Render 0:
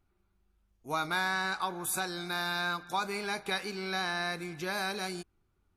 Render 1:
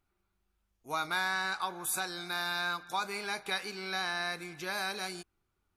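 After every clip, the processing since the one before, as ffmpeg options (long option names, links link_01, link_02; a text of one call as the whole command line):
ffmpeg -i in.wav -af "lowshelf=frequency=480:gain=-7.5" out.wav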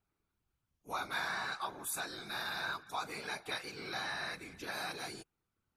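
ffmpeg -i in.wav -af "afftfilt=real='hypot(re,im)*cos(2*PI*random(0))':imag='hypot(re,im)*sin(2*PI*random(1))':win_size=512:overlap=0.75,volume=1dB" out.wav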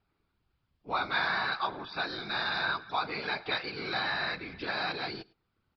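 ffmpeg -i in.wav -af "aresample=11025,aresample=44100,aecho=1:1:106:0.0631,volume=7.5dB" out.wav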